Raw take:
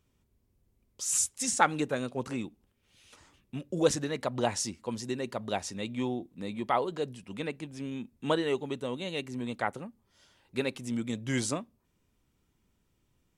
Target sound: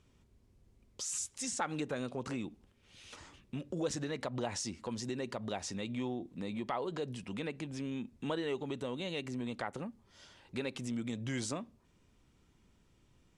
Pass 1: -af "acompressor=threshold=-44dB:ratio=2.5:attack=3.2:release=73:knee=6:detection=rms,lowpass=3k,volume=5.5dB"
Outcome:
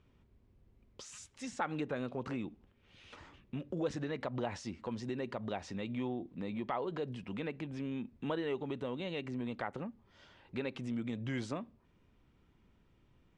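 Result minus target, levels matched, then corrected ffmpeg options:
8000 Hz band -13.0 dB
-af "acompressor=threshold=-44dB:ratio=2.5:attack=3.2:release=73:knee=6:detection=rms,lowpass=8k,volume=5.5dB"

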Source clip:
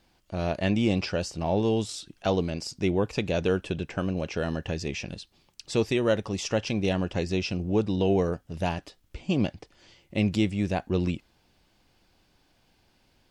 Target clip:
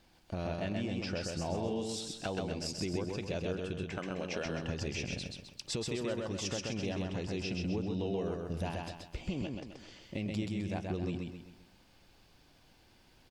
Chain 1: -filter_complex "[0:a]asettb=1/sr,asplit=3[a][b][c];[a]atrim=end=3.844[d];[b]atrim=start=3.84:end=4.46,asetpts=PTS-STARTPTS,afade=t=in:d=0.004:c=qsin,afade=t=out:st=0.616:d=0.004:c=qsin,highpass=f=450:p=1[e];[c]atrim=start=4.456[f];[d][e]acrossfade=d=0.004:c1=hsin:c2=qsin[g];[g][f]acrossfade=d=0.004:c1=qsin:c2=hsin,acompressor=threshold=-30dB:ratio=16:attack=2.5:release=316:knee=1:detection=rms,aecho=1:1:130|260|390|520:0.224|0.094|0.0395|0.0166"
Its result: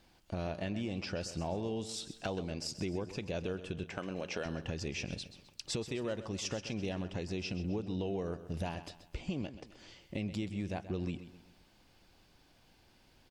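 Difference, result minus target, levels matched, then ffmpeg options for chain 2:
echo-to-direct -10 dB
-filter_complex "[0:a]asettb=1/sr,asplit=3[a][b][c];[a]atrim=end=3.844[d];[b]atrim=start=3.84:end=4.46,asetpts=PTS-STARTPTS,afade=t=in:d=0.004:c=qsin,afade=t=out:st=0.616:d=0.004:c=qsin,highpass=f=450:p=1[e];[c]atrim=start=4.456[f];[d][e]acrossfade=d=0.004:c1=hsin:c2=qsin[g];[g][f]acrossfade=d=0.004:c1=qsin:c2=hsin,acompressor=threshold=-30dB:ratio=16:attack=2.5:release=316:knee=1:detection=rms,aecho=1:1:130|260|390|520|650:0.708|0.297|0.125|0.0525|0.022"

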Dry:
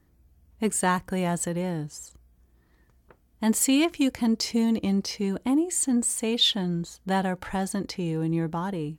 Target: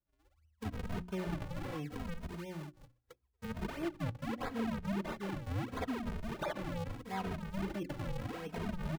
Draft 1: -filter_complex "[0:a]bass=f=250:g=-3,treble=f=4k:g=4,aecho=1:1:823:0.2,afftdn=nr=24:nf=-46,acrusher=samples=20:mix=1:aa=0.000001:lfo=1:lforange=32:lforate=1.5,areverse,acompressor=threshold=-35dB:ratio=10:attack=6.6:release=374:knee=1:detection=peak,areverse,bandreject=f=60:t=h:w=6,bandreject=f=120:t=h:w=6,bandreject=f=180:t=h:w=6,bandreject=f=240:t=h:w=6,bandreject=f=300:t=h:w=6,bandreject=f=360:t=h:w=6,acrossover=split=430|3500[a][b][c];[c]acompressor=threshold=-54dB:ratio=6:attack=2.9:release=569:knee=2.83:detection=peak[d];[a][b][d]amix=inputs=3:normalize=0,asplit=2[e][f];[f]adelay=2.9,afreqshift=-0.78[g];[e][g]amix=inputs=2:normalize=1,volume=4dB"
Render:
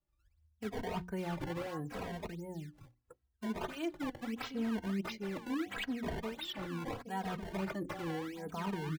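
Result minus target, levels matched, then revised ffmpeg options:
decimation with a swept rate: distortion -12 dB
-filter_complex "[0:a]bass=f=250:g=-3,treble=f=4k:g=4,aecho=1:1:823:0.2,afftdn=nr=24:nf=-46,acrusher=samples=73:mix=1:aa=0.000001:lfo=1:lforange=117:lforate=1.5,areverse,acompressor=threshold=-35dB:ratio=10:attack=6.6:release=374:knee=1:detection=peak,areverse,bandreject=f=60:t=h:w=6,bandreject=f=120:t=h:w=6,bandreject=f=180:t=h:w=6,bandreject=f=240:t=h:w=6,bandreject=f=300:t=h:w=6,bandreject=f=360:t=h:w=6,acrossover=split=430|3500[a][b][c];[c]acompressor=threshold=-54dB:ratio=6:attack=2.9:release=569:knee=2.83:detection=peak[d];[a][b][d]amix=inputs=3:normalize=0,asplit=2[e][f];[f]adelay=2.9,afreqshift=-0.78[g];[e][g]amix=inputs=2:normalize=1,volume=4dB"

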